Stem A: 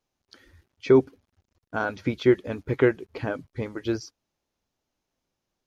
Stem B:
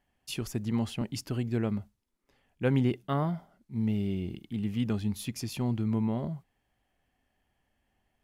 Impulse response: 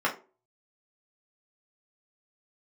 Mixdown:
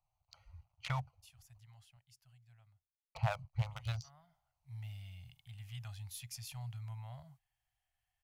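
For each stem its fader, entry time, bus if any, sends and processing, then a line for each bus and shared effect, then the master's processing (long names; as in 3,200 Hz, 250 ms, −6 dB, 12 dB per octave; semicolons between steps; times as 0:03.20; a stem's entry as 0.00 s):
+2.5 dB, 0.00 s, muted 0:01.60–0:03.15, no send, adaptive Wiener filter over 25 samples; parametric band 1,600 Hz −8 dB 0.21 octaves; downward compressor 2 to 1, threshold −28 dBFS, peak gain reduction 9 dB
−11.0 dB, 0.95 s, no send, parametric band 1,000 Hz −3 dB 0.77 octaves; automatic ducking −19 dB, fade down 1.60 s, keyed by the first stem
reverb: not used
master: elliptic band-stop filter 130–720 Hz, stop band 50 dB; high-shelf EQ 4,200 Hz +7 dB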